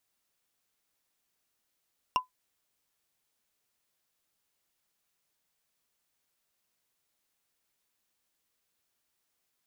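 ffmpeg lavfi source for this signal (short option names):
-f lavfi -i "aevalsrc='0.126*pow(10,-3*t/0.13)*sin(2*PI*1010*t)+0.0668*pow(10,-3*t/0.038)*sin(2*PI*2784.6*t)+0.0355*pow(10,-3*t/0.017)*sin(2*PI*5458*t)+0.0188*pow(10,-3*t/0.009)*sin(2*PI*9022.3*t)+0.01*pow(10,-3*t/0.006)*sin(2*PI*13473.4*t)':d=0.45:s=44100"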